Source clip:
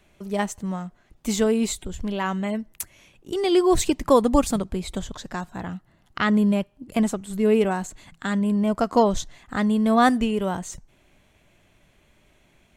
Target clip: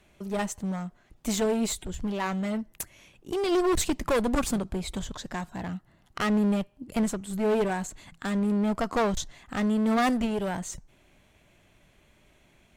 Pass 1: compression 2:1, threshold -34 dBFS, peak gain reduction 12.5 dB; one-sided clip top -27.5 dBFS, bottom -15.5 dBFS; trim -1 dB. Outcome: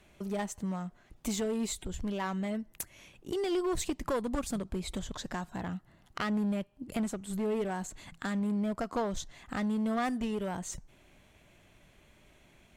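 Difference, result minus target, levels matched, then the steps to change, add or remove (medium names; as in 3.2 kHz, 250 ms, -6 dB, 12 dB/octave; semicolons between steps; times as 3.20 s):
compression: peak gain reduction +12.5 dB
remove: compression 2:1, threshold -34 dBFS, peak gain reduction 12.5 dB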